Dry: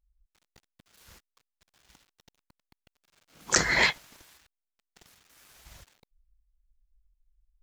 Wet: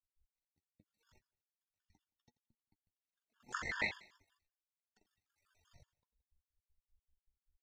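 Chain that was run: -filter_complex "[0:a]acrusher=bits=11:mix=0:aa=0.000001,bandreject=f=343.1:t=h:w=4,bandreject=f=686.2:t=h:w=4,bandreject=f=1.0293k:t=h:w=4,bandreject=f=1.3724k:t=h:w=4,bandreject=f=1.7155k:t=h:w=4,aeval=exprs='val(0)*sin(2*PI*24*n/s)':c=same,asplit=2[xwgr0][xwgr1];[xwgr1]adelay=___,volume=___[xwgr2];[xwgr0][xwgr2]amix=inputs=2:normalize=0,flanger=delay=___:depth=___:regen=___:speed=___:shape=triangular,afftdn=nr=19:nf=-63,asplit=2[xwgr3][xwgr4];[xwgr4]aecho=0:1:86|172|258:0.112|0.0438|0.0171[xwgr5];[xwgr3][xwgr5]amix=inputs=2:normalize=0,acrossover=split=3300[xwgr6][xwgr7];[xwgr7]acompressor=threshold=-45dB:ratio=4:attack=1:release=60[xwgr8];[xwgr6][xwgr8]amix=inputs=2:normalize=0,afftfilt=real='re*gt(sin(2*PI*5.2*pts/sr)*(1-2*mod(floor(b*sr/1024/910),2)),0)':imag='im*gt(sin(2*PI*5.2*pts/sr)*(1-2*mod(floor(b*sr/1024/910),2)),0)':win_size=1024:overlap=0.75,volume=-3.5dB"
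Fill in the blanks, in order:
13, -13dB, 8, 3, 47, 0.85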